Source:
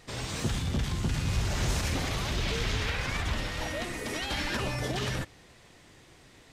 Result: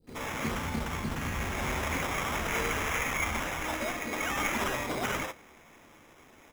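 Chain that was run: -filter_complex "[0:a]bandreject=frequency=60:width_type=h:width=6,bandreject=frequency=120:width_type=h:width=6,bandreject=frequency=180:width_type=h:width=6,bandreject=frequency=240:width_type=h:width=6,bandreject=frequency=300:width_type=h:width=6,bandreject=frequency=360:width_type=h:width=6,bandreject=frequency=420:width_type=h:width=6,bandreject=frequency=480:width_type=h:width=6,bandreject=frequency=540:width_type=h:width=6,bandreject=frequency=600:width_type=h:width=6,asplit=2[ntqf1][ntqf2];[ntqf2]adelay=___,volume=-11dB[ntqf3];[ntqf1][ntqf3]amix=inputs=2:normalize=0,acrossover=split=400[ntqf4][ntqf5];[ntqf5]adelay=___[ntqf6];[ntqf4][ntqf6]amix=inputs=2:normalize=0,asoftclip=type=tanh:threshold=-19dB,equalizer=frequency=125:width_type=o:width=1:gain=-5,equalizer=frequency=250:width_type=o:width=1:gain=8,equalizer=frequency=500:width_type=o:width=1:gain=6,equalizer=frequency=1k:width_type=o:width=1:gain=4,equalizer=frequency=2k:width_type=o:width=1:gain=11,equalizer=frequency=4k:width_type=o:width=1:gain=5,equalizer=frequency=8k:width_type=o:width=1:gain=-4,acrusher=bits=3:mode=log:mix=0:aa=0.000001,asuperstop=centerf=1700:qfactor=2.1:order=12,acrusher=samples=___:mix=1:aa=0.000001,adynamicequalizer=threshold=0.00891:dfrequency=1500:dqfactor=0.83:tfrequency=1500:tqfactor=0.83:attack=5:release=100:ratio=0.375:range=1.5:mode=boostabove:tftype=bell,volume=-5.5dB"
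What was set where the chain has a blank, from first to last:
13, 70, 10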